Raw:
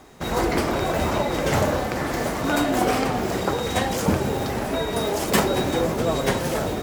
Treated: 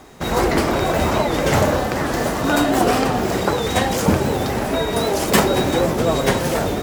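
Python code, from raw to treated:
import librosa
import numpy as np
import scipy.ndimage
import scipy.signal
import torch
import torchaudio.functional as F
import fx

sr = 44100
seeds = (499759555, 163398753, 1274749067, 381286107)

y = fx.notch(x, sr, hz=2200.0, q=12.0, at=(1.76, 3.25))
y = fx.record_warp(y, sr, rpm=78.0, depth_cents=100.0)
y = y * librosa.db_to_amplitude(4.5)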